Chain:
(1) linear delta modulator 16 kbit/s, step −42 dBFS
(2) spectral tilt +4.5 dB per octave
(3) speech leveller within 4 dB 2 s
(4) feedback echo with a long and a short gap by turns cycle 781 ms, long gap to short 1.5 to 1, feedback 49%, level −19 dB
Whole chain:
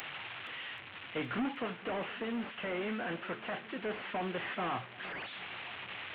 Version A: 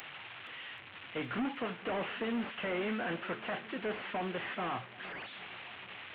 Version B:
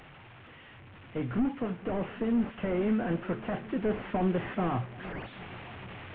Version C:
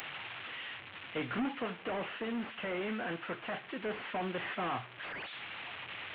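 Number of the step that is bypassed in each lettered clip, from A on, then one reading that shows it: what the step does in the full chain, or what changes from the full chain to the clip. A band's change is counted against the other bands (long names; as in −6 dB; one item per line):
3, change in crest factor −3.0 dB
2, 4 kHz band −13.0 dB
4, echo-to-direct ratio −16.0 dB to none audible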